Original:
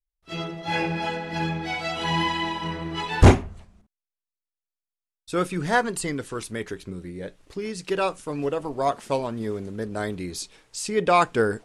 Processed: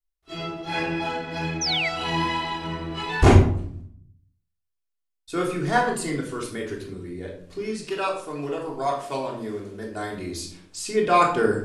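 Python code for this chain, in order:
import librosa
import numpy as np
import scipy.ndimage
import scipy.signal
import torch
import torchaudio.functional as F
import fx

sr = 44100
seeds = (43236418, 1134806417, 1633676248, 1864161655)

y = fx.low_shelf(x, sr, hz=380.0, db=-7.0, at=(7.87, 10.12))
y = fx.room_shoebox(y, sr, seeds[0], volume_m3=870.0, walls='furnished', distance_m=3.3)
y = fx.spec_paint(y, sr, seeds[1], shape='fall', start_s=1.61, length_s=0.28, low_hz=1900.0, high_hz=6300.0, level_db=-21.0)
y = fx.low_shelf(y, sr, hz=140.0, db=-3.5)
y = y * librosa.db_to_amplitude(-4.0)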